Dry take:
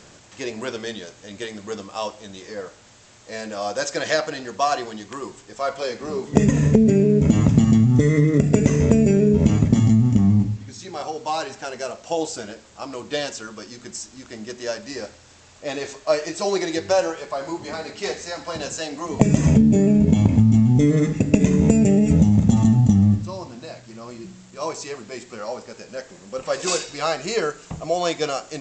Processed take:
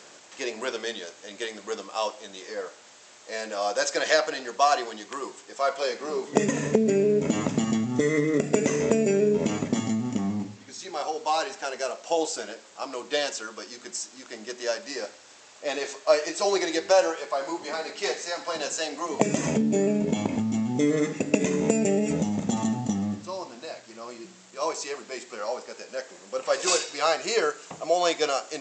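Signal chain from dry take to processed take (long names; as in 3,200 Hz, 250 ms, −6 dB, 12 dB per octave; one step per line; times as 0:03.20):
high-pass filter 370 Hz 12 dB per octave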